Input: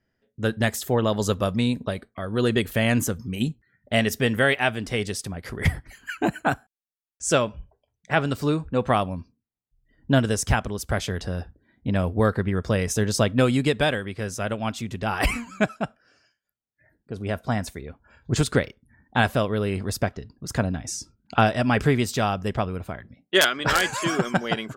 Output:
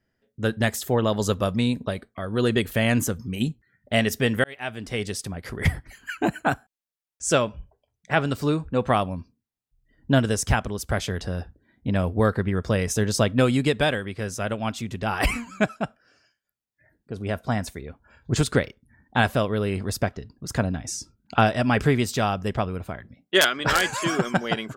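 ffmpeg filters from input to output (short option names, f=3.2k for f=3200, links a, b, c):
-filter_complex "[0:a]asplit=2[a][b];[a]atrim=end=4.44,asetpts=PTS-STARTPTS,afade=t=out:st=4.436:d=0.004:c=hsin[c];[b]atrim=start=4.44,asetpts=PTS-STARTPTS,afade=t=in:d=0.93:c=qsin[d];[c][d]concat=n=2:v=0:a=1"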